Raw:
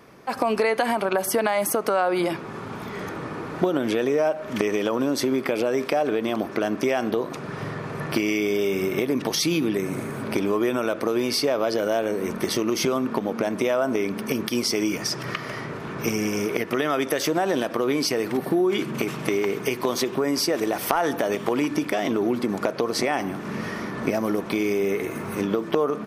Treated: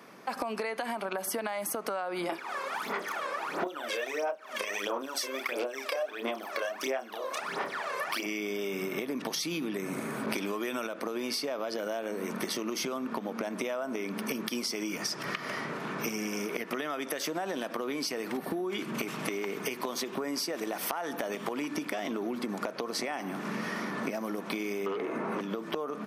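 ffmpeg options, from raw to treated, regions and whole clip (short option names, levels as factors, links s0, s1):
-filter_complex "[0:a]asettb=1/sr,asplit=3[s0][s1][s2];[s0]atrim=end=2.294[s3];[s1]atrim=start=2.29:end=8.26,asetpts=PTS-STARTPTS,afade=t=in:d=0.004:c=qsin,afade=t=out:st=5.966:d=0.004:c=qsin,asplit=2[s4][s5];[s5]adelay=30,volume=0.708[s6];[s4][s6]amix=inputs=2:normalize=0,atrim=end_sample=263277,aphaser=in_gain=1:out_gain=1:delay=1.9:decay=0.76:speed=1.5:type=sinusoidal,highpass=510[s7];[s2]atrim=start=8.256[s8];[s3][s7]acrossfade=d=0.004:c1=hsin:c2=qsin[s9];[s9][s8]acrossfade=d=0.004:c1=qsin:c2=hsin,asettb=1/sr,asplit=3[s10][s11][s12];[s10]atrim=end=10.264[s13];[s11]atrim=start=10.26:end=10.87,asetpts=PTS-STARTPTS,afade=t=in:d=0.004:c=qsin,afade=t=out:st=0.606:d=0.004:c=qsin,acontrast=34,adynamicequalizer=threshold=0.0158:dfrequency=1600:dqfactor=0.7:tfrequency=1600:tqfactor=0.7:attack=5:release=100:ratio=0.375:range=3:mode=boostabove:tftype=highshelf[s14];[s12]atrim=start=10.866[s15];[s13][s14]acrossfade=d=0.004:c1=hsin:c2=qsin[s16];[s16][s15]acrossfade=d=0.004:c1=qsin:c2=hsin,asettb=1/sr,asplit=3[s17][s18][s19];[s17]atrim=end=24.864[s20];[s18]atrim=start=24.86:end=25.41,asetpts=PTS-STARTPTS,afade=t=in:d=0.004:c=qsin,afade=t=out:st=0.546:d=0.004:c=qsin,bandpass=f=550:t=q:w=0.63,aeval=exprs='0.2*sin(PI/2*2.82*val(0)/0.2)':c=same[s21];[s19]atrim=start=25.406[s22];[s20][s21]acrossfade=d=0.004:c1=hsin:c2=qsin[s23];[s23][s22]acrossfade=d=0.004:c1=qsin:c2=hsin,highpass=f=180:w=0.5412,highpass=f=180:w=1.3066,equalizer=f=380:t=o:w=1.1:g=-4.5,acompressor=threshold=0.0316:ratio=10"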